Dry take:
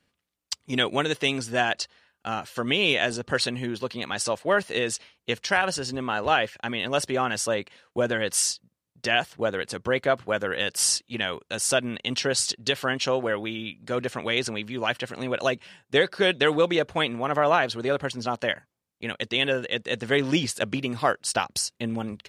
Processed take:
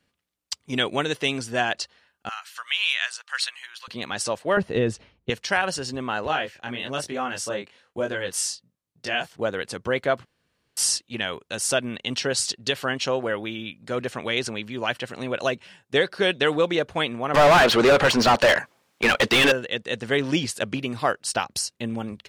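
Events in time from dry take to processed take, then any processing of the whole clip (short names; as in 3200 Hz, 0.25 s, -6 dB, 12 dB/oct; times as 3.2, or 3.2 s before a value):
2.29–3.88 HPF 1200 Hz 24 dB/oct
4.57–5.3 tilt -4 dB/oct
6.27–9.36 chorus 1.1 Hz, delay 19.5 ms, depth 5.1 ms
10.25–10.77 room tone
17.34–19.52 overdrive pedal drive 33 dB, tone 2600 Hz, clips at -8 dBFS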